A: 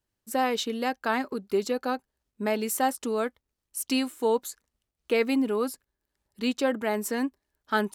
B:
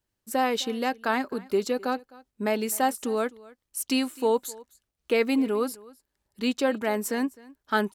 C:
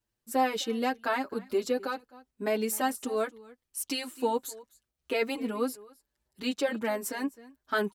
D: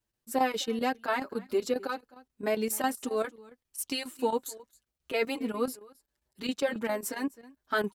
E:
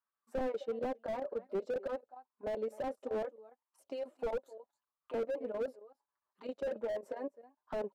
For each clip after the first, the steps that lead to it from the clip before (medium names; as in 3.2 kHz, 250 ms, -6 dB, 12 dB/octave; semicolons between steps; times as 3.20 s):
delay 258 ms -22 dB; trim +1 dB
endless flanger 6.7 ms +1.5 Hz
square tremolo 7.4 Hz, depth 65%, duty 85%
auto-wah 570–1200 Hz, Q 7, down, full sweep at -34 dBFS; slew-rate limiter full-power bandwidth 4.6 Hz; trim +8.5 dB